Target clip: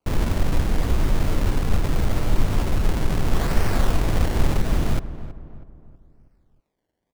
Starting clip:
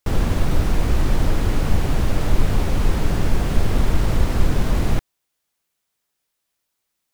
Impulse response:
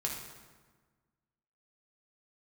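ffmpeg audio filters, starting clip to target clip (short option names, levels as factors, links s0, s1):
-filter_complex "[0:a]asettb=1/sr,asplit=3[s0][s1][s2];[s0]atrim=end=3.284[s3];[s1]atrim=start=3.28:end=4.57,asetpts=PTS-STARTPTS,afade=t=in:d=0.004:c=qsin,afade=t=out:st=1.286:d=0.004:c=qsin,highshelf=f=2400:g=11.5[s4];[s2]atrim=start=4.566[s5];[s3][s4]acrossfade=d=0.004:c1=hsin:c2=qsin[s6];[s6][s5]acrossfade=d=0.004:c1=qsin:c2=hsin,acrusher=samples=24:mix=1:aa=0.000001:lfo=1:lforange=24:lforate=0.76,asplit=2[s7][s8];[s8]adelay=322,lowpass=f=1500:p=1,volume=0.224,asplit=2[s9][s10];[s10]adelay=322,lowpass=f=1500:p=1,volume=0.46,asplit=2[s11][s12];[s12]adelay=322,lowpass=f=1500:p=1,volume=0.46,asplit=2[s13][s14];[s14]adelay=322,lowpass=f=1500:p=1,volume=0.46,asplit=2[s15][s16];[s16]adelay=322,lowpass=f=1500:p=1,volume=0.46[s17];[s7][s9][s11][s13][s15][s17]amix=inputs=6:normalize=0,volume=0.75"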